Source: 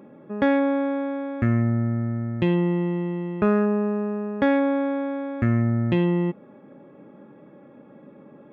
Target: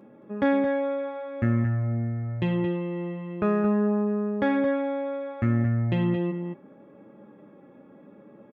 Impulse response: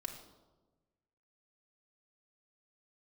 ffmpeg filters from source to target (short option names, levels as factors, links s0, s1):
-filter_complex "[0:a]flanger=delay=9:depth=2.3:regen=-37:speed=0.71:shape=sinusoidal,asplit=2[s0][s1];[s1]adelay=221.6,volume=0.447,highshelf=f=4000:g=-4.99[s2];[s0][s2]amix=inputs=2:normalize=0"